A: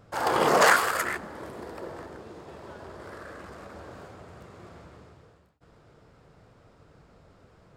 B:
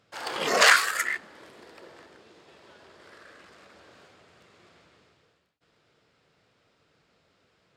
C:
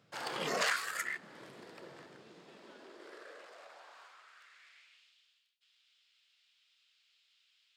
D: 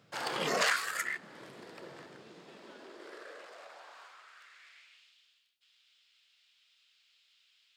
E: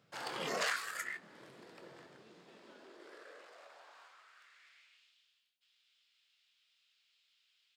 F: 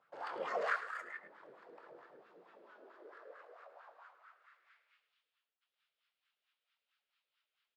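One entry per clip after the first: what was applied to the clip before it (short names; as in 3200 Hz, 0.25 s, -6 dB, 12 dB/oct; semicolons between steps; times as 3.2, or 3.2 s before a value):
spectral noise reduction 8 dB; weighting filter D; gain -2.5 dB
compressor 2:1, threshold -35 dBFS, peak gain reduction 12 dB; high-pass sweep 140 Hz -> 3100 Hz, 2.21–5.12; gain -3.5 dB
vocal rider 2 s; gain +3 dB
doubler 23 ms -11 dB; gain -6.5 dB
wah 4.5 Hz 450–1400 Hz, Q 2.8; echo 0.107 s -12.5 dB; gain +6 dB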